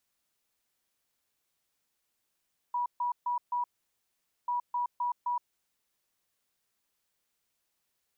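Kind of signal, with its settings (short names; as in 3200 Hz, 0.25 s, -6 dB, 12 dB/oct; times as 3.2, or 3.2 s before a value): beep pattern sine 972 Hz, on 0.12 s, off 0.14 s, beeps 4, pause 0.84 s, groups 2, -27.5 dBFS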